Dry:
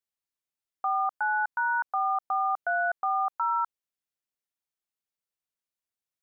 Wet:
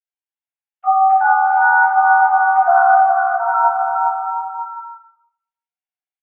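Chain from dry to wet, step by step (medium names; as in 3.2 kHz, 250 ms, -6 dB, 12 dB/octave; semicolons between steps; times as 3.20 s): formants replaced by sine waves; 3.03–3.54 s: Gaussian low-pass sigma 8 samples; bouncing-ball echo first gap 410 ms, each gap 0.75×, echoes 5; reverberation RT60 0.75 s, pre-delay 4 ms, DRR -11 dB; trim +2.5 dB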